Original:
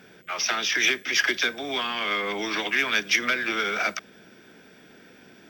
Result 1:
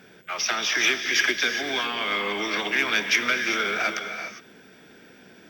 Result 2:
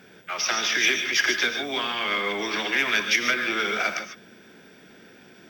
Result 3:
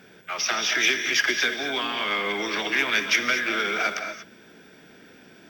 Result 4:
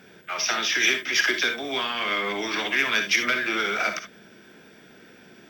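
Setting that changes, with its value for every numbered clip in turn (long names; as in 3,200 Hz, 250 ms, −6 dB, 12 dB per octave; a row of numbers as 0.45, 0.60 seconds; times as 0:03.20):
reverb whose tail is shaped and stops, gate: 430, 170, 260, 90 milliseconds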